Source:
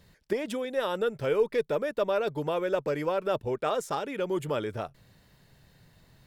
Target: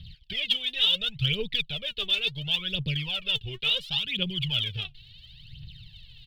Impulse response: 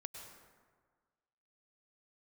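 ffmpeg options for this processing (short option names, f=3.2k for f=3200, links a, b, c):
-af "firequalizer=gain_entry='entry(130,0);entry(290,-23);entry(480,-26);entry(930,-28);entry(1600,-19);entry(3000,14);entry(4300,4);entry(6400,-27);entry(13000,-20)':delay=0.05:min_phase=1,aphaser=in_gain=1:out_gain=1:delay=2.9:decay=0.74:speed=0.71:type=triangular,volume=6.5dB"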